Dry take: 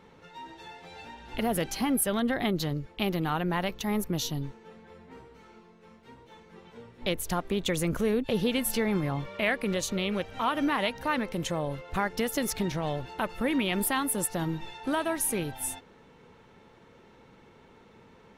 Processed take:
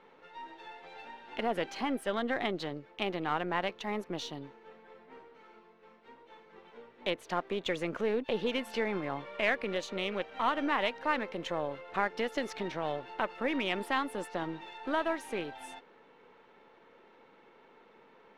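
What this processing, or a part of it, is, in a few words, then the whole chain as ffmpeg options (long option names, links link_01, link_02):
crystal radio: -af "highpass=350,lowpass=3200,aeval=exprs='if(lt(val(0),0),0.708*val(0),val(0))':channel_layout=same"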